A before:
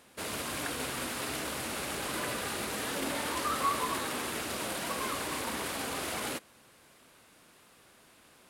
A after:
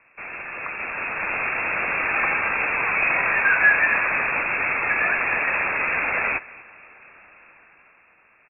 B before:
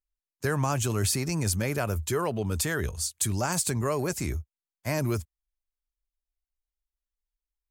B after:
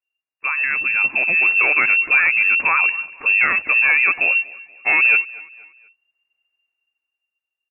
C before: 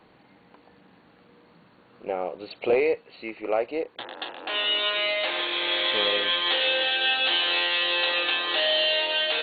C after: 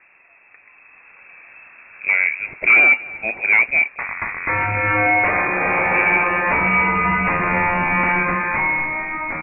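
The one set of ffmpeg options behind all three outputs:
-af "dynaudnorm=f=130:g=17:m=10dB,volume=12.5dB,asoftclip=hard,volume=-12.5dB,aecho=1:1:239|478|717:0.0891|0.0357|0.0143,lowpass=f=2.4k:t=q:w=0.5098,lowpass=f=2.4k:t=q:w=0.6013,lowpass=f=2.4k:t=q:w=0.9,lowpass=f=2.4k:t=q:w=2.563,afreqshift=-2800,volume=4dB"

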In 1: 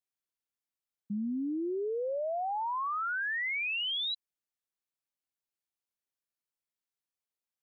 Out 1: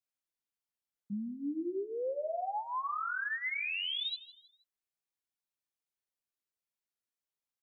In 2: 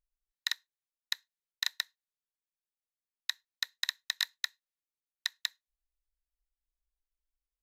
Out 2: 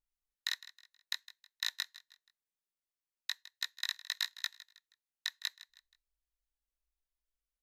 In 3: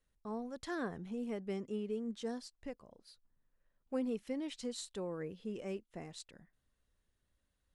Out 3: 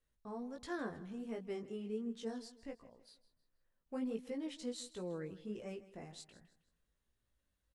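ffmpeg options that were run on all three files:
-af "flanger=delay=17:depth=3.6:speed=1.4,aecho=1:1:159|318|477:0.141|0.0523|0.0193"

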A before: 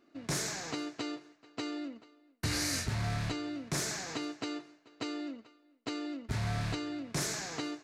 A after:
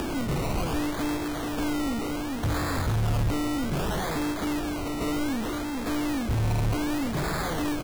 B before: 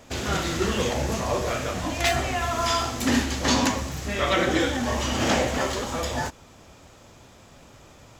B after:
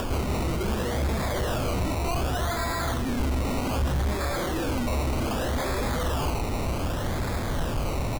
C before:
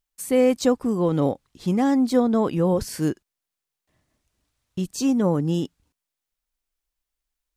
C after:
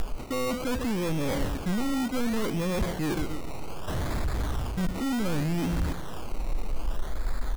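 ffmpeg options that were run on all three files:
-filter_complex "[0:a]aeval=exprs='val(0)+0.5*0.0282*sgn(val(0))':c=same,lowpass=f=8k:w=0.5412,lowpass=f=8k:w=1.3066,highshelf=f=5k:g=-7,asplit=2[a][b];[b]adelay=140,lowpass=f=2k:p=1,volume=-16.5dB,asplit=2[c][d];[d]adelay=140,lowpass=f=2k:p=1,volume=0.43,asplit=2[e][f];[f]adelay=140,lowpass=f=2k:p=1,volume=0.43,asplit=2[g][h];[h]adelay=140,lowpass=f=2k:p=1,volume=0.43[i];[a][c][e][g][i]amix=inputs=5:normalize=0,areverse,acompressor=threshold=-28dB:ratio=8,areverse,acrusher=samples=21:mix=1:aa=0.000001:lfo=1:lforange=12.6:lforate=0.65,asoftclip=type=hard:threshold=-32.5dB,lowshelf=f=76:g=12,acompressor=mode=upward:threshold=-36dB:ratio=2.5,volume=5.5dB"

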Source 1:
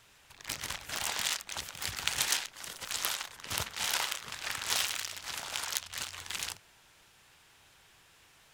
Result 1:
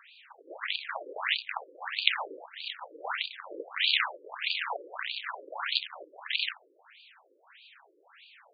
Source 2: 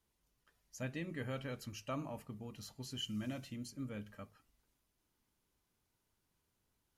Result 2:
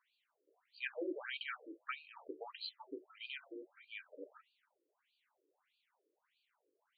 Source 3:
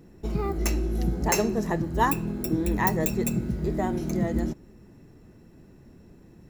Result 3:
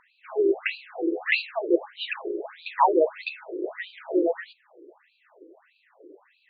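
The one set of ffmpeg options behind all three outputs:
-af "highpass=140,apsyclip=11dB,afftfilt=real='re*between(b*sr/1024,390*pow(3400/390,0.5+0.5*sin(2*PI*1.6*pts/sr))/1.41,390*pow(3400/390,0.5+0.5*sin(2*PI*1.6*pts/sr))*1.41)':imag='im*between(b*sr/1024,390*pow(3400/390,0.5+0.5*sin(2*PI*1.6*pts/sr))/1.41,390*pow(3400/390,0.5+0.5*sin(2*PI*1.6*pts/sr))*1.41)':win_size=1024:overlap=0.75"

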